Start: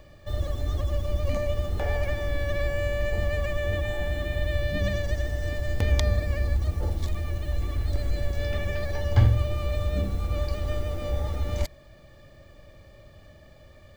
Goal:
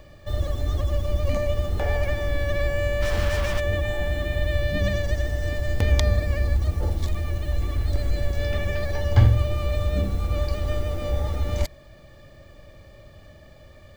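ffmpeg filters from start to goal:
-filter_complex "[0:a]asplit=3[s0][s1][s2];[s0]afade=t=out:st=3.01:d=0.02[s3];[s1]acrusher=bits=4:mix=0:aa=0.5,afade=t=in:st=3.01:d=0.02,afade=t=out:st=3.59:d=0.02[s4];[s2]afade=t=in:st=3.59:d=0.02[s5];[s3][s4][s5]amix=inputs=3:normalize=0,volume=1.41"

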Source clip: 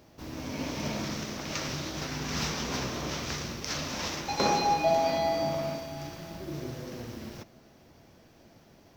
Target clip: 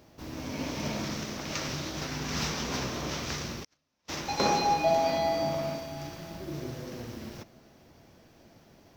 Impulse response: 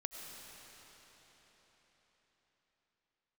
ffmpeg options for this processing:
-filter_complex "[0:a]asplit=3[s0][s1][s2];[s0]afade=t=out:st=3.63:d=0.02[s3];[s1]agate=range=0.00562:threshold=0.0447:ratio=16:detection=peak,afade=t=in:st=3.63:d=0.02,afade=t=out:st=4.08:d=0.02[s4];[s2]afade=t=in:st=4.08:d=0.02[s5];[s3][s4][s5]amix=inputs=3:normalize=0"

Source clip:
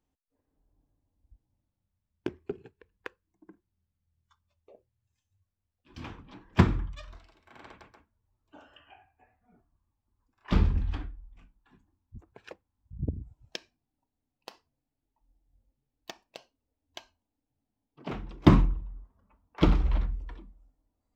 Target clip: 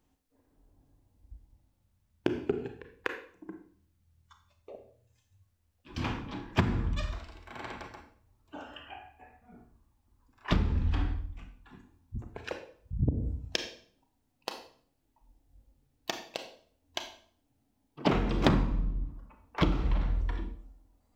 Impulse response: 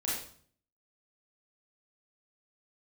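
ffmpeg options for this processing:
-filter_complex "[0:a]asettb=1/sr,asplit=3[s0][s1][s2];[s0]atrim=end=18.054[s3];[s1]atrim=start=18.05:end=18.71,asetpts=PTS-STARTPTS,afade=t=in:d=0.004:c=qsin,afade=t=out:st=0.656:d=0.004:c=qsin,aeval=exprs='0.75*sin(PI/2*3.16*val(0)/0.75)':c=same[s4];[s2]atrim=start=18.706[s5];[s3][s4]acrossfade=d=0.004:c1=hsin:c2=qsin[s6];[s6][s5]acrossfade=d=0.004:c1=qsin:c2=hsin,asplit=2[s7][s8];[1:a]atrim=start_sample=2205[s9];[s8][s9]afir=irnorm=-1:irlink=0,volume=0.422[s10];[s7][s10]amix=inputs=2:normalize=0,acompressor=threshold=0.0355:ratio=12,volume=2"

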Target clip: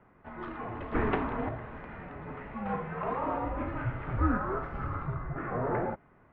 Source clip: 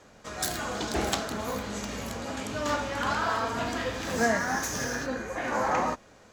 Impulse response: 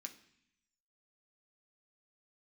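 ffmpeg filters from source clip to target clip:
-filter_complex "[0:a]asettb=1/sr,asplit=3[s0][s1][s2];[s0]atrim=end=0.924[s3];[s1]atrim=start=0.92:end=1.49,asetpts=PTS-STARTPTS,afade=t=in:d=0.004:c=qsin,afade=t=out:st=0.566:d=0.004:c=qsin,acontrast=78[s4];[s2]atrim=start=1.486[s5];[s3][s4]acrossfade=d=0.004:c1=hsin:c2=qsin[s6];[s6][s5]acrossfade=d=0.004:c1=qsin:c2=hsin,highpass=f=380:t=q:w=0.5412,highpass=f=380:t=q:w=1.307,lowpass=f=2500:t=q:w=0.5176,lowpass=f=2500:t=q:w=0.7071,lowpass=f=2500:t=q:w=1.932,afreqshift=-390,asettb=1/sr,asplit=3[s7][s8][s9];[s7]atrim=end=3.464[s10];[s8]atrim=start=3.46:end=5.37,asetpts=PTS-STARTPTS,afade=t=in:d=0.004:c=qsin,afade=t=out:st=1.906:d=0.004:c=qsin,lowshelf=f=120:g=11[s11];[s9]atrim=start=5.366[s12];[s10][s11]acrossfade=d=0.004:c1=hsin:c2=qsin[s13];[s13][s12]acrossfade=d=0.004:c1=qsin:c2=hsin,volume=0.668"

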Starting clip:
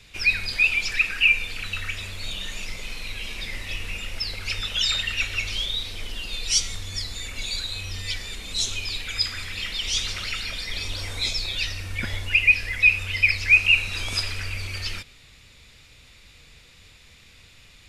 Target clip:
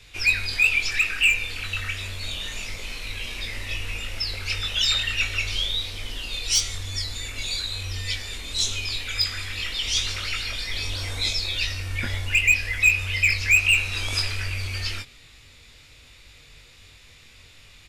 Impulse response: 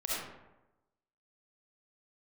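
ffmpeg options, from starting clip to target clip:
-filter_complex "[0:a]equalizer=f=180:t=o:w=0.28:g=-9,acrossover=split=740[s0][s1];[s1]asoftclip=type=hard:threshold=0.188[s2];[s0][s2]amix=inputs=2:normalize=0,asplit=2[s3][s4];[s4]adelay=21,volume=0.562[s5];[s3][s5]amix=inputs=2:normalize=0"

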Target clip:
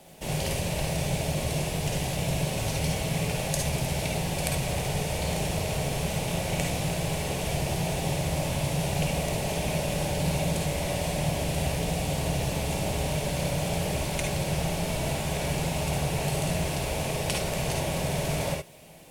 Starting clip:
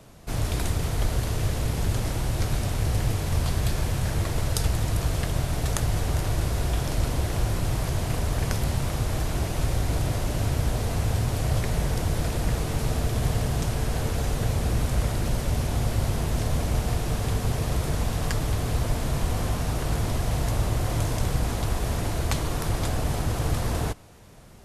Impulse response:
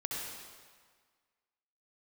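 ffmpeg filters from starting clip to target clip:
-filter_complex "[0:a]acrossover=split=9000[s0][s1];[s1]acompressor=threshold=0.00126:ratio=4:attack=1:release=60[s2];[s0][s2]amix=inputs=2:normalize=0,equalizer=f=125:t=o:w=1:g=3,equalizer=f=500:t=o:w=1:g=8,equalizer=f=1000:t=o:w=1:g=-11,equalizer=f=2000:t=o:w=1:g=7,equalizer=f=8000:t=o:w=1:g=6[s3];[1:a]atrim=start_sample=2205,atrim=end_sample=4410[s4];[s3][s4]afir=irnorm=-1:irlink=0,asetrate=56889,aresample=44100,lowshelf=f=220:g=-9.5"

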